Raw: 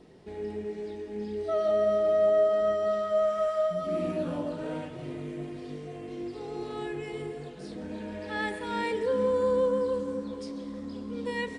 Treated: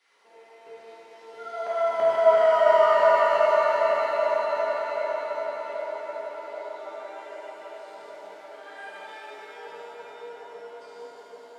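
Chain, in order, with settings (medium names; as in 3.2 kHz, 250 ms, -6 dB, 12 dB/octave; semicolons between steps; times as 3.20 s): Doppler pass-by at 2.48 s, 26 m/s, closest 14 m; reverse; upward compressor, threshold -40 dBFS; reverse; LFO high-pass saw down 3 Hz 560–1900 Hz; high-pass 130 Hz 12 dB/octave; on a send: band-passed feedback delay 782 ms, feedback 70%, band-pass 420 Hz, level -3.5 dB; on the sum: pitch-shifted reverb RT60 4 s, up +7 st, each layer -8 dB, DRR -11.5 dB; trim -6.5 dB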